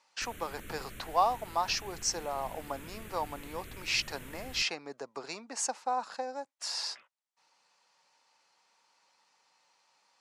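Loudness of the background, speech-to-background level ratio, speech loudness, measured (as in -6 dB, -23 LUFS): -48.0 LUFS, 13.5 dB, -34.5 LUFS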